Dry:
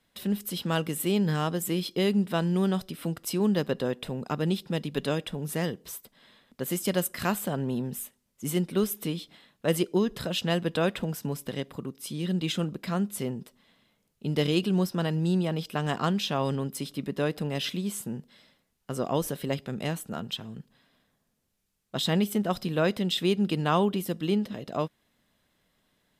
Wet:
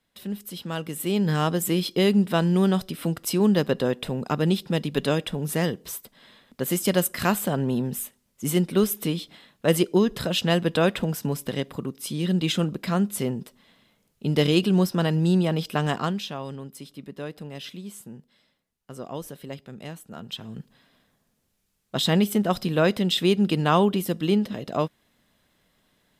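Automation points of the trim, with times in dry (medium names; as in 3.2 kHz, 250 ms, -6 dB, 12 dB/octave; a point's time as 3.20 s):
0.76 s -3.5 dB
1.43 s +5 dB
15.83 s +5 dB
16.43 s -7 dB
20.06 s -7 dB
20.59 s +4.5 dB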